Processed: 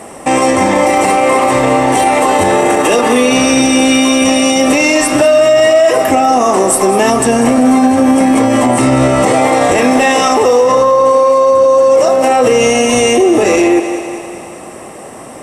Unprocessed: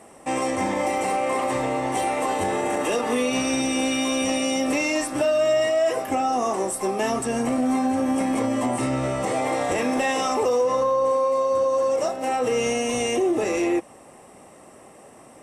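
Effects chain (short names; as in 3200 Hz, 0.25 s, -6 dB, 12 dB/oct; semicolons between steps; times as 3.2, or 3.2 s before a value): thinning echo 0.195 s, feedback 61%, high-pass 200 Hz, level -12.5 dB; maximiser +18 dB; gain -1 dB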